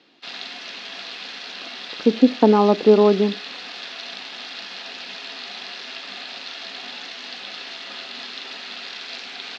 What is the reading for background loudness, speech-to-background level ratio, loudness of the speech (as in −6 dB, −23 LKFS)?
−32.5 LKFS, 15.5 dB, −17.0 LKFS